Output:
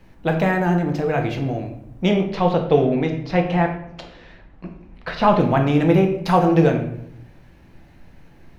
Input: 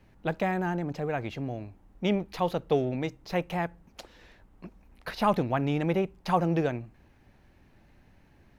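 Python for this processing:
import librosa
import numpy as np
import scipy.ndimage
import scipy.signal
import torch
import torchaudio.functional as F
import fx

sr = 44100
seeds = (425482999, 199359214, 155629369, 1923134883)

y = fx.lowpass(x, sr, hz=4000.0, slope=12, at=(2.25, 5.4))
y = fx.room_shoebox(y, sr, seeds[0], volume_m3=170.0, walls='mixed', distance_m=0.7)
y = y * 10.0 ** (7.5 / 20.0)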